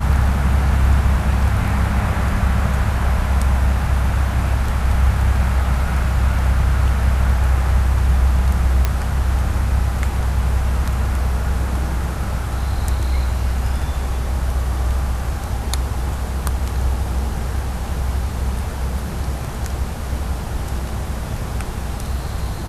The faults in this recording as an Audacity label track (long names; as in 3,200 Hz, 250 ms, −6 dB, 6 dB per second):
8.850000	8.850000	click −4 dBFS